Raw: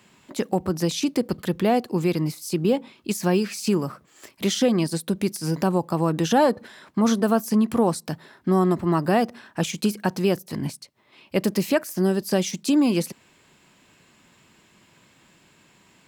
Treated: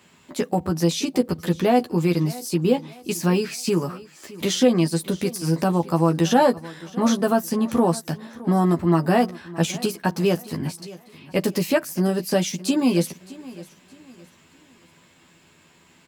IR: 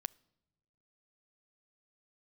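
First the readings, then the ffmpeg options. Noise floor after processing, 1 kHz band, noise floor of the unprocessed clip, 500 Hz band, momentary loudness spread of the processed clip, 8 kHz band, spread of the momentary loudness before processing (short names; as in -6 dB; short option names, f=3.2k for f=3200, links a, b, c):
-56 dBFS, +2.0 dB, -59 dBFS, +1.5 dB, 13 LU, +1.5 dB, 10 LU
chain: -filter_complex "[0:a]asplit=2[a][b];[b]adelay=12,volume=-4dB[c];[a][c]amix=inputs=2:normalize=0,aecho=1:1:616|1232|1848:0.112|0.0393|0.0137"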